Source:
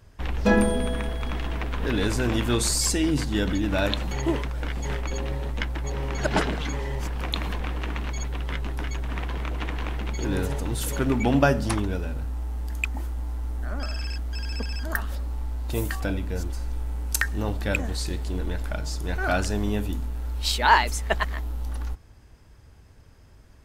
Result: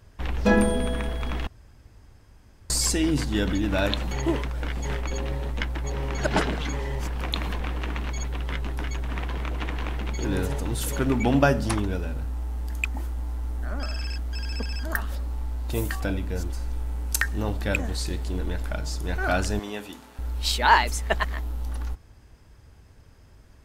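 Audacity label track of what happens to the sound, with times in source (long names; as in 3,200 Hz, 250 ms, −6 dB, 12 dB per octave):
1.470000	2.700000	fill with room tone
19.590000	20.190000	meter weighting curve A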